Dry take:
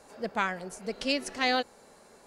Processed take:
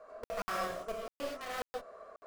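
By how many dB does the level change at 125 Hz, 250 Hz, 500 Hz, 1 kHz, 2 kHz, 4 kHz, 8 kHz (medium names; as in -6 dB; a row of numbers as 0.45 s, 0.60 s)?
-8.5 dB, -14.0 dB, -5.0 dB, -7.0 dB, -11.5 dB, -14.5 dB, -8.0 dB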